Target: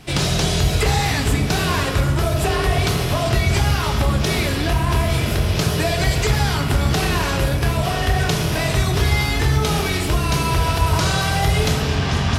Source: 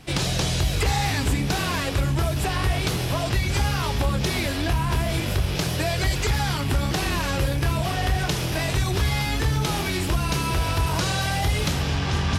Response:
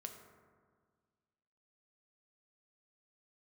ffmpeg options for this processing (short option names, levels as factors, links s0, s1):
-filter_complex "[1:a]atrim=start_sample=2205[s0];[0:a][s0]afir=irnorm=-1:irlink=0,volume=2.82"